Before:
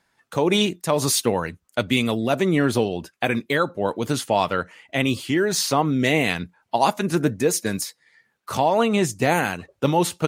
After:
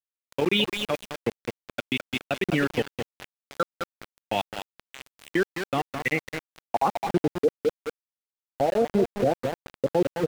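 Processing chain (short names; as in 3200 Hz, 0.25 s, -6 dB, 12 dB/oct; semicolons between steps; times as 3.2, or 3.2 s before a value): level quantiser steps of 19 dB; bell 1000 Hz -11.5 dB 0.28 oct; notch 630 Hz, Q 12; feedback echo 0.209 s, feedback 44%, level -6.5 dB; on a send at -23 dB: reverb RT60 1.4 s, pre-delay 5 ms; on the sum: reverb removal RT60 1 s; HPF 72 Hz 24 dB/oct; low-pass sweep 2900 Hz -> 570 Hz, 5.76–7.51; elliptic low-pass 7500 Hz, stop band 40 dB; sample gate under -27.5 dBFS; high shelf 4700 Hz -6.5 dB; limiter -13 dBFS, peak gain reduction 7 dB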